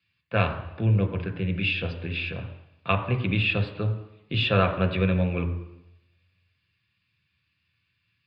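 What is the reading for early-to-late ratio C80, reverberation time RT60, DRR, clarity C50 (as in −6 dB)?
12.5 dB, 0.85 s, 5.0 dB, 10.5 dB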